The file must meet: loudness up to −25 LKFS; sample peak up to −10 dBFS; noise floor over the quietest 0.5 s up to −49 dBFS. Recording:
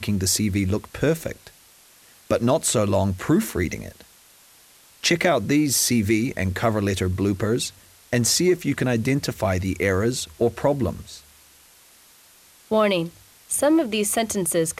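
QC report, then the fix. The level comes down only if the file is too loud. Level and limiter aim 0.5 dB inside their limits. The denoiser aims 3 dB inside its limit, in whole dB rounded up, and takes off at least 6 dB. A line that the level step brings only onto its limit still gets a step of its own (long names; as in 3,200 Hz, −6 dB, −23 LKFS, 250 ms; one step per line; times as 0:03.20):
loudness −22.0 LKFS: out of spec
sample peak −5.5 dBFS: out of spec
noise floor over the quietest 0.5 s −53 dBFS: in spec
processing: level −3.5 dB
brickwall limiter −10.5 dBFS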